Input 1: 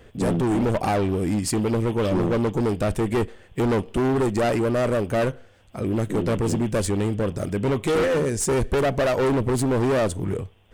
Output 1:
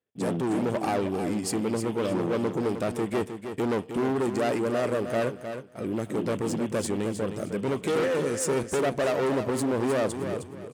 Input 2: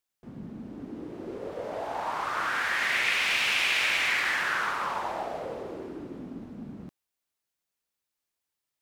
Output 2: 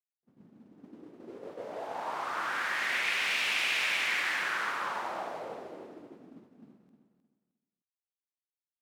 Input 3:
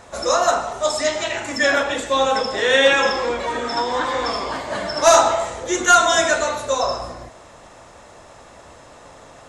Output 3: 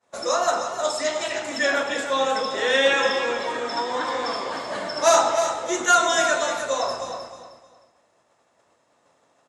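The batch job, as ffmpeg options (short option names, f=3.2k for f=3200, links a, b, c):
-filter_complex "[0:a]highpass=160,agate=range=-33dB:threshold=-33dB:ratio=3:detection=peak,asplit=2[a][b];[b]aecho=0:1:310|620|930:0.376|0.0977|0.0254[c];[a][c]amix=inputs=2:normalize=0,volume=-4.5dB"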